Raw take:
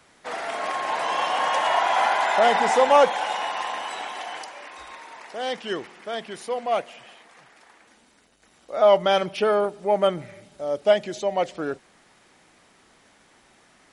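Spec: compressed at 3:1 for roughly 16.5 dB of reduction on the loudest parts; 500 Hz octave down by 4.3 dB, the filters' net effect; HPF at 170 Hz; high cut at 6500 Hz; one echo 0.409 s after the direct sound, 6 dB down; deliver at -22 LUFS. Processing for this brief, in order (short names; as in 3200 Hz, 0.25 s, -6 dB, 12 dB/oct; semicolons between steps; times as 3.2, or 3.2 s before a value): HPF 170 Hz; LPF 6500 Hz; bell 500 Hz -5.5 dB; compressor 3:1, threshold -38 dBFS; echo 0.409 s -6 dB; gain +15.5 dB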